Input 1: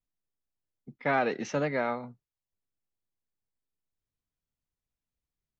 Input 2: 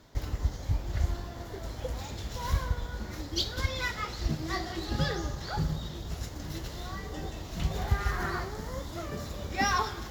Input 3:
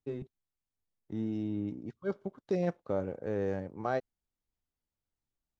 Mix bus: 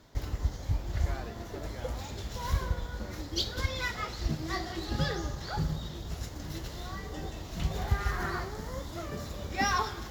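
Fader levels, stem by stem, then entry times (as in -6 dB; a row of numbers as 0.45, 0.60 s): -17.5, -1.0, -17.0 dB; 0.00, 0.00, 0.10 s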